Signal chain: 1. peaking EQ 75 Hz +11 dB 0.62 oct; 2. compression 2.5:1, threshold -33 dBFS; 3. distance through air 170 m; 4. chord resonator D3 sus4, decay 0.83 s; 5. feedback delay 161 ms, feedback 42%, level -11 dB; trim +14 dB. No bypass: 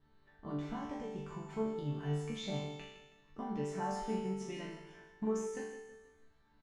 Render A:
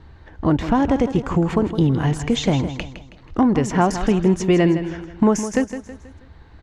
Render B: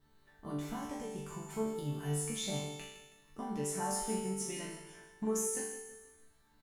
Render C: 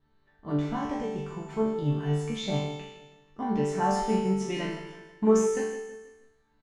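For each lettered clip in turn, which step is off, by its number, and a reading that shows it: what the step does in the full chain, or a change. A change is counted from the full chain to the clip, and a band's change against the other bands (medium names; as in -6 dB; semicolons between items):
4, 250 Hz band +3.0 dB; 3, 8 kHz band +15.5 dB; 2, mean gain reduction 9.0 dB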